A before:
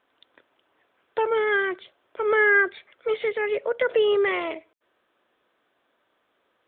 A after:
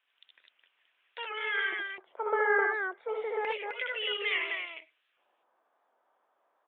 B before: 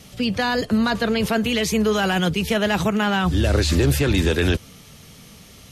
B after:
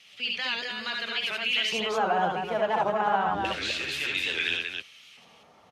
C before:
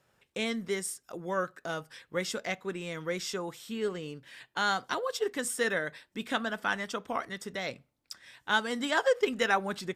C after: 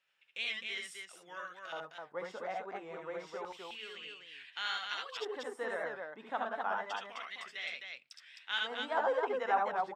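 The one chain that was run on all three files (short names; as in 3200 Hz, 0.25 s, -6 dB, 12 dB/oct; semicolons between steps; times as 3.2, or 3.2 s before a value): LFO band-pass square 0.29 Hz 830–2700 Hz; tapped delay 65/77/259 ms -5.5/-3.5/-4 dB; record warp 78 rpm, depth 100 cents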